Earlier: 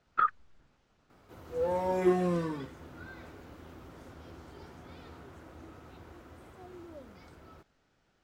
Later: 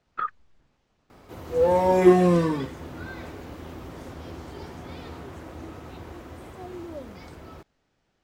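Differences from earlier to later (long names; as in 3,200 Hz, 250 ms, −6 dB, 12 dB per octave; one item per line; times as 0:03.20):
background +10.5 dB
master: add parametric band 1,400 Hz −5 dB 0.29 octaves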